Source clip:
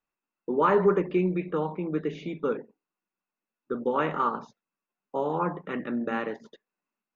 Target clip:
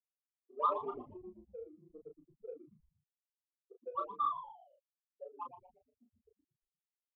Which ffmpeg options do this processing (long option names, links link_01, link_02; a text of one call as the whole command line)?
ffmpeg -i in.wav -filter_complex "[0:a]bandreject=frequency=60:width_type=h:width=6,bandreject=frequency=120:width_type=h:width=6,bandreject=frequency=180:width_type=h:width=6,bandreject=frequency=240:width_type=h:width=6,bandreject=frequency=300:width_type=h:width=6,bandreject=frequency=360:width_type=h:width=6,bandreject=frequency=420:width_type=h:width=6,bandreject=frequency=480:width_type=h:width=6,bandreject=frequency=540:width_type=h:width=6,afftfilt=real='re*gte(hypot(re,im),0.316)':imag='im*gte(hypot(re,im),0.316)':win_size=1024:overlap=0.75,afftdn=noise_reduction=22:noise_floor=-45,acrossover=split=440 2700:gain=0.2 1 0.112[link_01][link_02][link_03];[link_01][link_02][link_03]amix=inputs=3:normalize=0,adynamicsmooth=sensitivity=6.5:basefreq=3000,asplit=3[link_04][link_05][link_06];[link_04]bandpass=frequency=730:width_type=q:width=8,volume=0dB[link_07];[link_05]bandpass=frequency=1090:width_type=q:width=8,volume=-6dB[link_08];[link_06]bandpass=frequency=2440:width_type=q:width=8,volume=-9dB[link_09];[link_07][link_08][link_09]amix=inputs=3:normalize=0,aeval=exprs='0.075*(cos(1*acos(clip(val(0)/0.075,-1,1)))-cos(1*PI/2))+0.000531*(cos(7*acos(clip(val(0)/0.075,-1,1)))-cos(7*PI/2))':channel_layout=same,asplit=2[link_10][link_11];[link_11]adelay=33,volume=-5dB[link_12];[link_10][link_12]amix=inputs=2:normalize=0,asplit=5[link_13][link_14][link_15][link_16][link_17];[link_14]adelay=117,afreqshift=-150,volume=-11.5dB[link_18];[link_15]adelay=234,afreqshift=-300,volume=-19.5dB[link_19];[link_16]adelay=351,afreqshift=-450,volume=-27.4dB[link_20];[link_17]adelay=468,afreqshift=-600,volume=-35.4dB[link_21];[link_13][link_18][link_19][link_20][link_21]amix=inputs=5:normalize=0,aresample=11025,aresample=44100,adynamicequalizer=threshold=0.00316:dfrequency=1700:dqfactor=0.7:tfrequency=1700:tqfactor=0.7:attack=5:release=100:ratio=0.375:range=3:mode=boostabove:tftype=highshelf,volume=3dB" out.wav